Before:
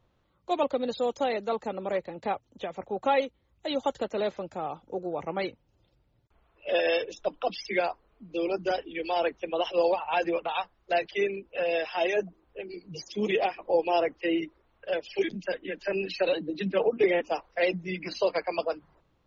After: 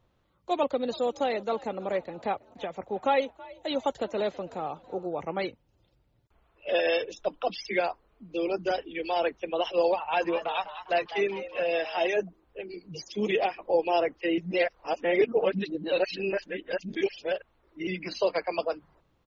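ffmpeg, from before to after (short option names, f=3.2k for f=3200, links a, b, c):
-filter_complex "[0:a]asplit=3[a][b][c];[a]afade=t=out:st=0.88:d=0.02[d];[b]asplit=4[e][f][g][h];[f]adelay=326,afreqshift=57,volume=-21dB[i];[g]adelay=652,afreqshift=114,volume=-27.9dB[j];[h]adelay=978,afreqshift=171,volume=-34.9dB[k];[e][i][j][k]amix=inputs=4:normalize=0,afade=t=in:st=0.88:d=0.02,afade=t=out:st=5.07:d=0.02[l];[c]afade=t=in:st=5.07:d=0.02[m];[d][l][m]amix=inputs=3:normalize=0,asettb=1/sr,asplit=3[n][o][p];[n]atrim=end=10.004[q];[o]atrim=start=10:end=12.08,asetpts=PTS-STARTPTS,afade=t=in:d=0.004:c=qsin,afade=t=out:st=2.076:d=0.004:c=qsin,asplit=6[r][s][t][u][v][w];[s]adelay=201,afreqshift=130,volume=-12.5dB[x];[t]adelay=402,afreqshift=260,volume=-19.2dB[y];[u]adelay=603,afreqshift=390,volume=-26dB[z];[v]adelay=804,afreqshift=520,volume=-32.7dB[aa];[w]adelay=1005,afreqshift=650,volume=-39.5dB[ab];[r][x][y][z][aa][ab]amix=inputs=6:normalize=0,atrim=end_sample=91728[ac];[p]atrim=start=12.076[ad];[q][ac]acrossfade=d=0.004:c1=hsin:c2=qsin[ae];[ae][ad]acrossfade=d=0.004:c1=qsin:c2=hsin,asplit=3[af][ag][ah];[af]atrim=end=14.382[ai];[ag]atrim=start=14.378:end=17.872,asetpts=PTS-STARTPTS,areverse[aj];[ah]atrim=start=17.868[ak];[ai][aj]acrossfade=d=0.004:c1=hsin:c2=hsin[al];[al][ak]acrossfade=d=0.004:c1=hsin:c2=hsin"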